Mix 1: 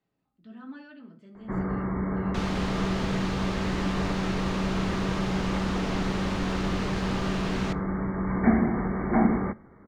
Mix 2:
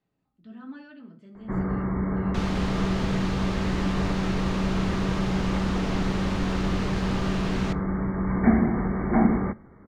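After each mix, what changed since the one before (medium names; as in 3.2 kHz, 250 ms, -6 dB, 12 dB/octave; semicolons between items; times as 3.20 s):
master: add bass shelf 190 Hz +4.5 dB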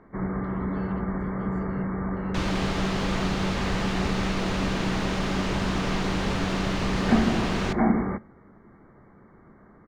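first sound: entry -1.35 s; second sound +4.0 dB; master: add bass shelf 190 Hz -4.5 dB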